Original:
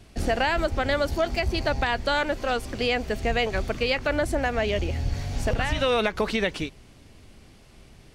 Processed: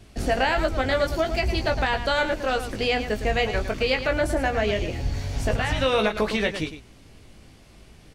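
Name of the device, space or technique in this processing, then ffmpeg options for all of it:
slapback doubling: -filter_complex "[0:a]asplit=3[link_01][link_02][link_03];[link_02]adelay=19,volume=-6dB[link_04];[link_03]adelay=110,volume=-10dB[link_05];[link_01][link_04][link_05]amix=inputs=3:normalize=0"

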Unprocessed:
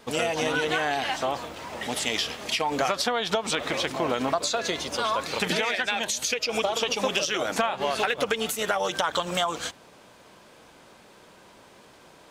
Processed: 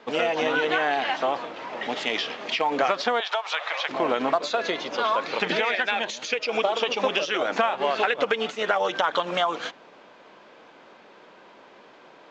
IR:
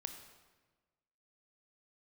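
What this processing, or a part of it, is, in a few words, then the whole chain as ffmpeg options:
telephone: -filter_complex "[0:a]asettb=1/sr,asplit=3[link_01][link_02][link_03];[link_01]atrim=end=3.204[link_04];[link_02]atrim=start=3.2:end=3.89,asetpts=PTS-STARTPTS,afade=type=in:duration=0.004:curve=qsin,afade=type=out:start_time=0.686:duration=0.004:curve=qsin,highpass=frequency=690:width=0.5412,highpass=frequency=690:width=1.3066[link_05];[link_03]atrim=start=3.886[link_06];[link_04][link_05]acrossfade=duration=0.004:curve1=hsin:curve2=qsin[link_07];[link_07][link_06]acrossfade=duration=0.004:curve1=qsin:curve2=hsin,highpass=260,lowpass=3100,volume=3dB" -ar 16000 -c:a pcm_mulaw

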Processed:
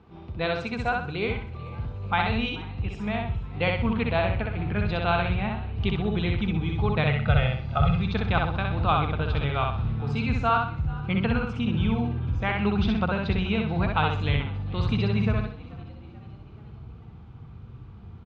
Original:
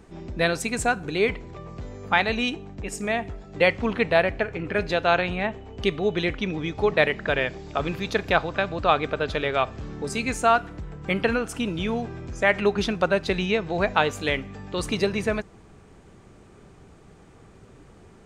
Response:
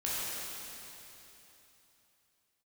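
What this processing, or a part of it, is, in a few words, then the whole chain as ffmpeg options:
frequency-shifting delay pedal into a guitar cabinet: -filter_complex "[0:a]equalizer=frequency=2300:width=1.1:gain=-4,asettb=1/sr,asplit=3[link_01][link_02][link_03];[link_01]atrim=end=7.054[link_04];[link_02]atrim=start=7.05:end=7.96,asetpts=PTS-STARTPTS,afade=type=in:duration=0.004:curve=qsin,afade=type=out:start_time=0.906:duration=0.004:curve=qsin,aecho=1:1:1.5:0.95,atrim=end_sample=40131[link_05];[link_03]atrim=start=7.956[link_06];[link_04][link_05]acrossfade=duration=0.004:curve1=hsin:curve2=qsin[link_07];[link_07][link_06]acrossfade=duration=0.004:curve1=qsin:curve2=hsin,asubboost=boost=4.5:cutoff=190,asplit=5[link_08][link_09][link_10][link_11][link_12];[link_09]adelay=434,afreqshift=64,volume=-21dB[link_13];[link_10]adelay=868,afreqshift=128,volume=-26.5dB[link_14];[link_11]adelay=1302,afreqshift=192,volume=-32dB[link_15];[link_12]adelay=1736,afreqshift=256,volume=-37.5dB[link_16];[link_08][link_13][link_14][link_15][link_16]amix=inputs=5:normalize=0,highpass=76,equalizer=frequency=180:width_type=q:width=4:gain=-6,equalizer=frequency=280:width_type=q:width=4:gain=-8,equalizer=frequency=400:width_type=q:width=4:gain=-6,equalizer=frequency=590:width_type=q:width=4:gain=-9,equalizer=frequency=1800:width_type=q:width=4:gain=-9,lowpass=frequency=3500:width=0.5412,lowpass=frequency=3500:width=1.3066,aecho=1:1:63|126|189|252|315:0.708|0.248|0.0867|0.0304|0.0106"

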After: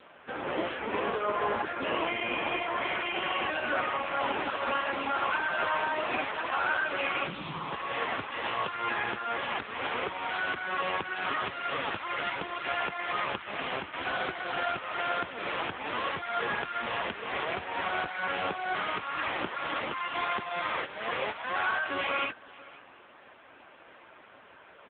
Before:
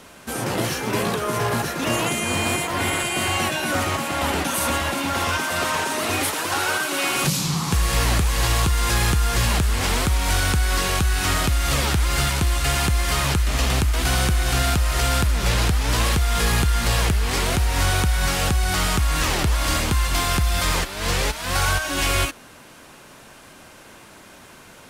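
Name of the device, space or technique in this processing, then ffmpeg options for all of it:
satellite phone: -af "highpass=360,lowpass=3100,aecho=1:1:513:0.0891,volume=-1.5dB" -ar 8000 -c:a libopencore_amrnb -b:a 5900

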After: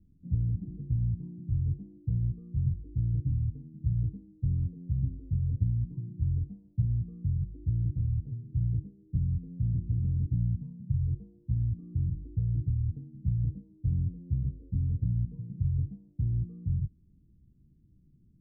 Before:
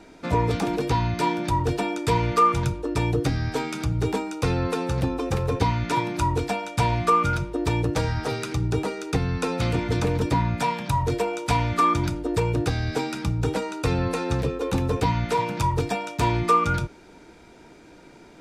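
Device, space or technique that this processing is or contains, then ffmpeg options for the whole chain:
the neighbour's flat through the wall: -af "lowpass=frequency=170:width=0.5412,lowpass=frequency=170:width=1.3066,equalizer=frequency=90:width_type=o:width=0.77:gain=3.5,volume=-4dB"

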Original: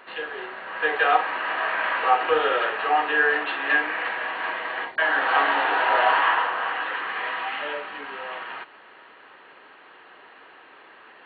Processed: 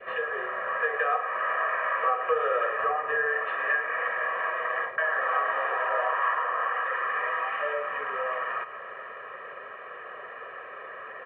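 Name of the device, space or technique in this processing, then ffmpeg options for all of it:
bass amplifier: -filter_complex "[0:a]asettb=1/sr,asplit=3[link_01][link_02][link_03];[link_01]atrim=end=2.804[link_04];[link_02]atrim=start=2.8:end=3.26,asetpts=PTS-STARTPTS,afade=type=in:duration=0.004:curve=qsin,afade=type=out:start_time=0.456:duration=0.004:curve=qsin,aemphasis=mode=reproduction:type=bsi[link_05];[link_03]atrim=start=3.256[link_06];[link_04][link_05]acrossfade=duration=0.004:curve1=hsin:curve2=qsin[link_07];[link_07][link_06]acrossfade=duration=0.004:curve1=qsin:curve2=hsin,acompressor=threshold=-39dB:ratio=3,highpass=81,equalizer=frequency=180:width_type=q:width=4:gain=-5,equalizer=frequency=530:width_type=q:width=4:gain=4,equalizer=frequency=770:width_type=q:width=4:gain=-5,lowpass=frequency=2200:width=0.5412,lowpass=frequency=2200:width=1.3066,aecho=1:1:1.7:0.87,adynamicequalizer=threshold=0.00447:dfrequency=1100:dqfactor=1.2:tfrequency=1100:tqfactor=1.2:attack=5:release=100:ratio=0.375:range=2:mode=boostabove:tftype=bell,aecho=1:1:106:0.211,volume=5dB"

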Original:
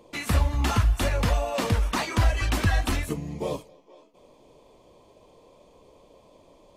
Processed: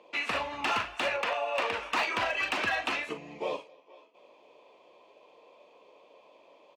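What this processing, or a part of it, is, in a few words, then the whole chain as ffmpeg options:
megaphone: -filter_complex "[0:a]asettb=1/sr,asplit=3[link_01][link_02][link_03];[link_01]atrim=end=1.164[link_04];[link_02]atrim=start=1.16:end=1.73,asetpts=PTS-STARTPTS,afade=type=in:duration=0.004:curve=qsin,afade=type=out:start_time=0.566:duration=0.004:curve=qsin,bass=frequency=250:gain=-14,treble=frequency=4000:gain=-6[link_05];[link_03]atrim=start=1.726[link_06];[link_04][link_05]acrossfade=duration=0.004:curve1=hsin:curve2=qsin[link_07];[link_07][link_06]acrossfade=duration=0.004:curve1=qsin:curve2=hsin,highpass=500,lowpass=3600,equalizer=frequency=2600:width_type=o:width=0.33:gain=8,asoftclip=type=hard:threshold=-22dB,asplit=2[link_08][link_09];[link_09]adelay=41,volume=-11.5dB[link_10];[link_08][link_10]amix=inputs=2:normalize=0"

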